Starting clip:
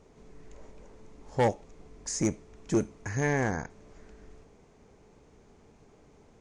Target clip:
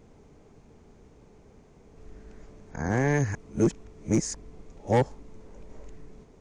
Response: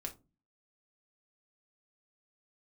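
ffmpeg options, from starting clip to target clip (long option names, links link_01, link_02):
-af "areverse,lowshelf=frequency=380:gain=5.5"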